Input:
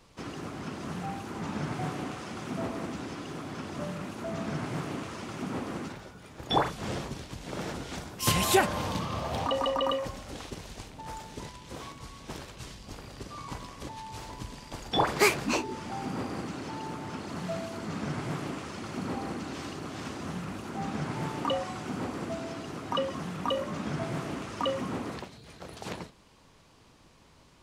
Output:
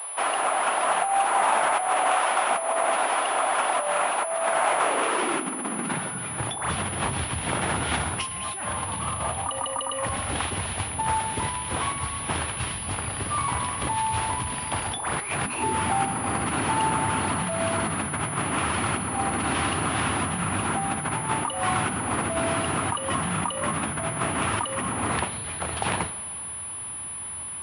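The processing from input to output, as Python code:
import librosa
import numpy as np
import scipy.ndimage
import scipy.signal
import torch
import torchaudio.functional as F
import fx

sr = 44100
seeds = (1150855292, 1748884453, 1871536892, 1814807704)

y = fx.filter_sweep_highpass(x, sr, from_hz=650.0, to_hz=82.0, start_s=4.7, end_s=6.66, q=2.8)
y = fx.over_compress(y, sr, threshold_db=-36.0, ratio=-1.0)
y = fx.band_shelf(y, sr, hz=1600.0, db=9.0, octaves=2.6)
y = fx.rev_schroeder(y, sr, rt60_s=2.1, comb_ms=38, drr_db=14.5)
y = fx.pwm(y, sr, carrier_hz=10000.0)
y = F.gain(torch.from_numpy(y), 4.5).numpy()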